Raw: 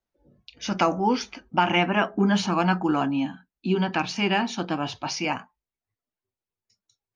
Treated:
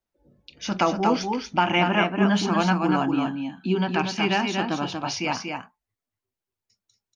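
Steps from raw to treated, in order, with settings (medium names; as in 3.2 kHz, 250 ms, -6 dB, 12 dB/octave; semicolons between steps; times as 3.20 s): delay 237 ms -5 dB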